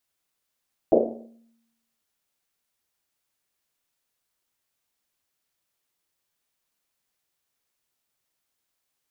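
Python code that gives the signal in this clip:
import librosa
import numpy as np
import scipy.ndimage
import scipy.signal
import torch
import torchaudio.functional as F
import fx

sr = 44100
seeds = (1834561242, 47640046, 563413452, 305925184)

y = fx.risset_drum(sr, seeds[0], length_s=1.1, hz=230.0, decay_s=0.97, noise_hz=490.0, noise_width_hz=370.0, noise_pct=75)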